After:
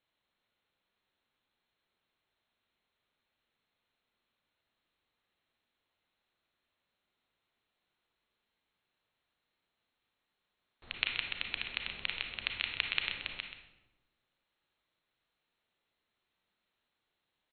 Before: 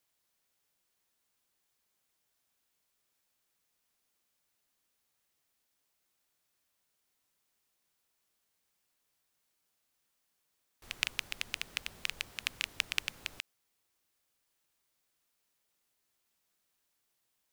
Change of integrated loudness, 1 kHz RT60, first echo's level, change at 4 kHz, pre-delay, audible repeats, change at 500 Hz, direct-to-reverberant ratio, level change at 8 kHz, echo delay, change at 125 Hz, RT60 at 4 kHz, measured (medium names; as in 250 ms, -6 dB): +1.0 dB, 0.90 s, -10.5 dB, +1.5 dB, 30 ms, 1, +2.0 dB, 3.0 dB, under -30 dB, 129 ms, +2.5 dB, 0.65 s